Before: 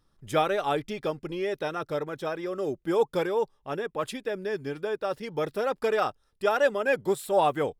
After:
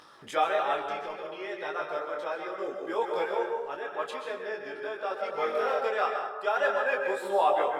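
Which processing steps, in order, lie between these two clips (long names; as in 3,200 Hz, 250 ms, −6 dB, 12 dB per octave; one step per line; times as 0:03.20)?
high-pass filter 760 Hz 12 dB per octave
dense smooth reverb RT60 1.1 s, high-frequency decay 0.5×, pre-delay 110 ms, DRR 2.5 dB
0:00.76–0:01.24: transient designer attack −12 dB, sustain +2 dB
0:02.96–0:03.77: centre clipping without the shift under −52 dBFS
spectral tilt −1.5 dB per octave
upward compression, threshold −35 dBFS
high-shelf EQ 7,400 Hz −12 dB
0:05.30–0:05.79: flutter between parallel walls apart 3.7 metres, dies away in 0.52 s
micro pitch shift up and down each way 13 cents
level +4.5 dB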